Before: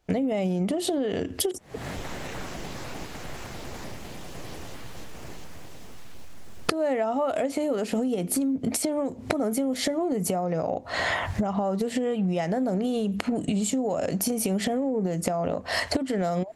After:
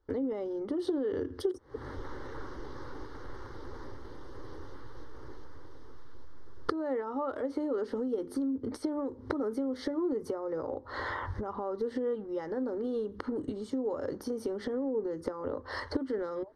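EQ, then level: polynomial smoothing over 15 samples; high shelf 2500 Hz -9 dB; fixed phaser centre 680 Hz, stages 6; -2.0 dB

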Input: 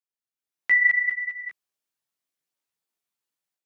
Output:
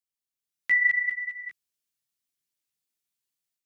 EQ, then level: bell 780 Hz -11.5 dB 2.6 oct; +2.5 dB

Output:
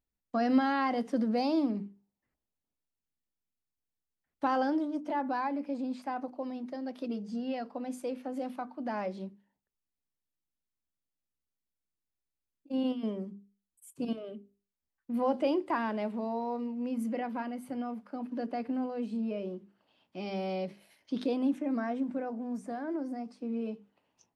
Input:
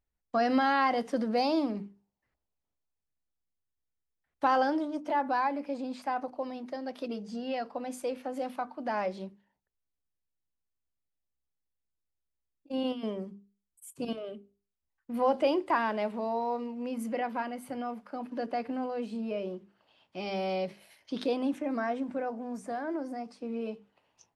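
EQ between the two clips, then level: bell 240 Hz +7.5 dB 1.3 oct; -5.0 dB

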